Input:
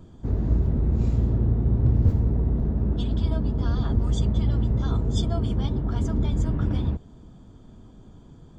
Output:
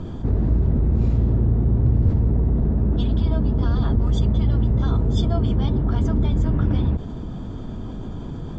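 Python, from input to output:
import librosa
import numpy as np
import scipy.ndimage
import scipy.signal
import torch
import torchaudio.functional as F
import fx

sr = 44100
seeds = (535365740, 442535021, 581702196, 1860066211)

y = fx.air_absorb(x, sr, metres=110.0)
y = fx.env_flatten(y, sr, amount_pct=50)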